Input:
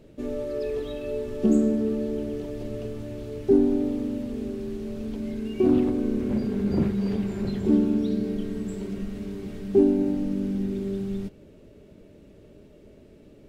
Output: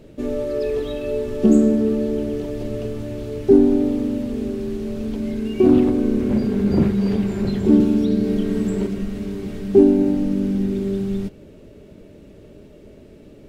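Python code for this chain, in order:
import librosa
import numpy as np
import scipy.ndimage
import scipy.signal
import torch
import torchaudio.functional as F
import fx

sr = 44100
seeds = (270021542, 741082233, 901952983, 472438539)

y = fx.band_squash(x, sr, depth_pct=70, at=(7.8, 8.87))
y = y * librosa.db_to_amplitude(6.5)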